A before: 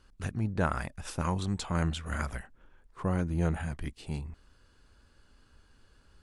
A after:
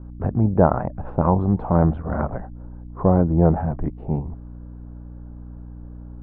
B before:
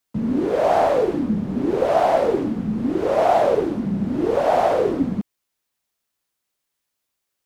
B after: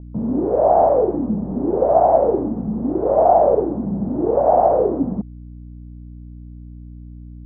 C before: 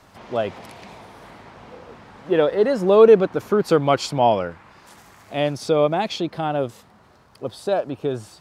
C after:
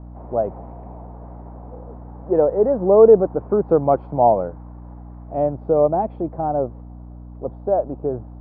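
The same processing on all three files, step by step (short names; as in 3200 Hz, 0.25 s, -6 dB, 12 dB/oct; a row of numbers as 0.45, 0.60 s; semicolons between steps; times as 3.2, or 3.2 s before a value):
bell 63 Hz -14.5 dB 0.42 oct; hum 60 Hz, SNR 15 dB; ladder low-pass 960 Hz, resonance 35%; normalise peaks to -2 dBFS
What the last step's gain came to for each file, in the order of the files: +20.5, +7.5, +6.5 dB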